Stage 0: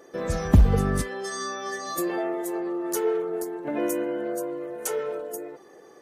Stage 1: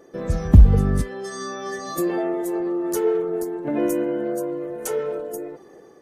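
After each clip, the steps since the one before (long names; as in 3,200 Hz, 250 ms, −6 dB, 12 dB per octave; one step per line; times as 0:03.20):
low-shelf EQ 440 Hz +8 dB
automatic gain control gain up to 3 dB
low-shelf EQ 170 Hz +4 dB
level −3.5 dB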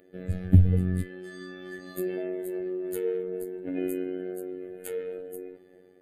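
phases set to zero 91.7 Hz
phaser with its sweep stopped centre 2,500 Hz, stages 4
level −4 dB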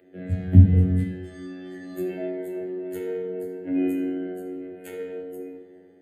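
convolution reverb RT60 0.85 s, pre-delay 3 ms, DRR −0.5 dB
level −8 dB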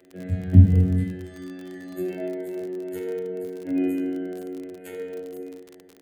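surface crackle 39 per second −33 dBFS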